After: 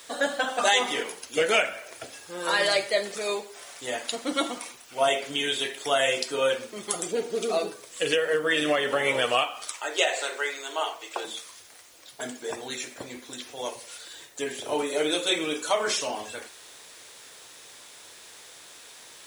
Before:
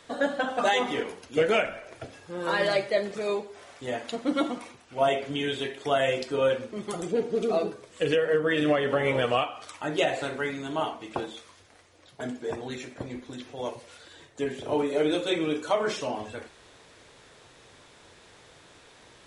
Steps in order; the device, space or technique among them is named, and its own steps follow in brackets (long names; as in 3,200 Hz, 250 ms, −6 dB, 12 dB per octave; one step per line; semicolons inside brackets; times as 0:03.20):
0:09.72–0:11.25: Chebyshev band-pass filter 400–8,300 Hz, order 3
turntable without a phono preamp (RIAA equalisation recording; white noise bed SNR 30 dB)
level +1.5 dB